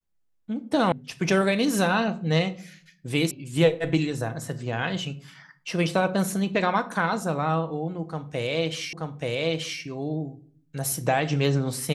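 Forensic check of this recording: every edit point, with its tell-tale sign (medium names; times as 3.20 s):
0.92 s: sound stops dead
3.31 s: sound stops dead
8.93 s: repeat of the last 0.88 s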